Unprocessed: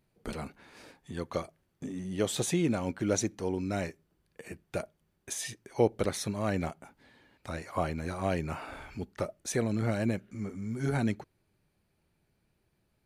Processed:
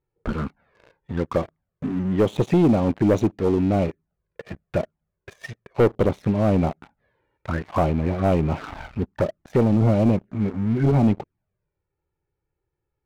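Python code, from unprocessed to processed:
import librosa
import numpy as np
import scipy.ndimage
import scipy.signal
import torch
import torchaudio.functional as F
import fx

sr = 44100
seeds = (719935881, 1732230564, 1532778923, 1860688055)

y = scipy.signal.sosfilt(scipy.signal.butter(2, 1700.0, 'lowpass', fs=sr, output='sos'), x)
y = fx.env_flanger(y, sr, rest_ms=2.3, full_db=-29.5)
y = fx.leveller(y, sr, passes=3)
y = F.gain(torch.from_numpy(y), 3.0).numpy()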